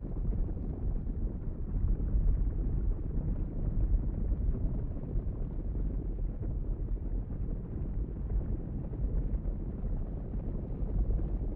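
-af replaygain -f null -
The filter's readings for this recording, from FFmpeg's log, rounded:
track_gain = +25.1 dB
track_peak = 0.096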